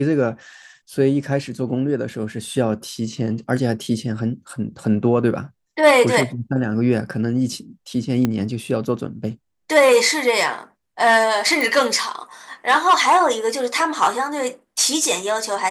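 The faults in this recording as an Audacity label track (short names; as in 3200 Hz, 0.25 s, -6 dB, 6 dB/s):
8.250000	8.250000	pop -7 dBFS
11.610000	11.610000	pop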